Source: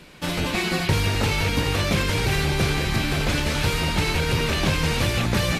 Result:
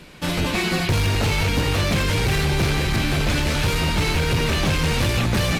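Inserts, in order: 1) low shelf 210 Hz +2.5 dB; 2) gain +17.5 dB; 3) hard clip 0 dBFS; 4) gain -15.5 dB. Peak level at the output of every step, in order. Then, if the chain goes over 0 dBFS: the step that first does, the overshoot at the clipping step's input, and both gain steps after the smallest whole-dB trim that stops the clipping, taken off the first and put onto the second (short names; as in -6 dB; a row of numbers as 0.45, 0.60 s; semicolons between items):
-8.5, +9.0, 0.0, -15.5 dBFS; step 2, 9.0 dB; step 2 +8.5 dB, step 4 -6.5 dB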